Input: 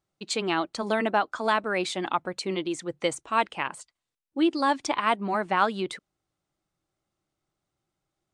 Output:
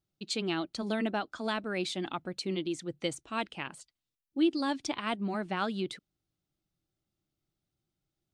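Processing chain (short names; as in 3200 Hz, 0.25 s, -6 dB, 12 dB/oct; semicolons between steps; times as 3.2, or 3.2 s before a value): graphic EQ 500/1000/2000/8000 Hz -6/-11/-6/-7 dB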